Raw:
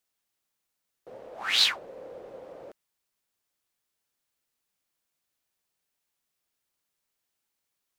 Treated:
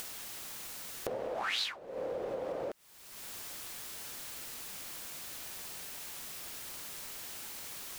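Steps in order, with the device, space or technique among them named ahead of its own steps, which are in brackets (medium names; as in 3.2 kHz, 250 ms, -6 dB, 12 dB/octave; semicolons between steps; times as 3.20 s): upward and downward compression (upward compressor, threshold -34 dBFS; compression 6:1, threshold -46 dBFS, peak gain reduction 25.5 dB); trim +11.5 dB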